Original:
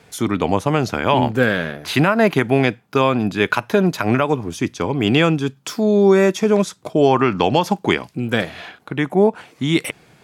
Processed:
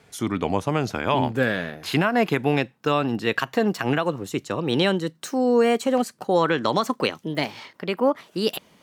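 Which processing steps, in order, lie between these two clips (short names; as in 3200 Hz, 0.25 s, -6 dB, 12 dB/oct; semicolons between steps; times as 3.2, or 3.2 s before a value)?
speed glide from 97% -> 135%; gain -5.5 dB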